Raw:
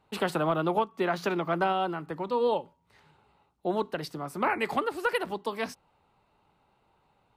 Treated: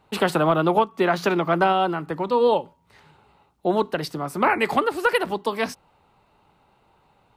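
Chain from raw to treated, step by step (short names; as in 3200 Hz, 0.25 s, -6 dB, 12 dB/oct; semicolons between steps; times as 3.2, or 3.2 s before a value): gain +7.5 dB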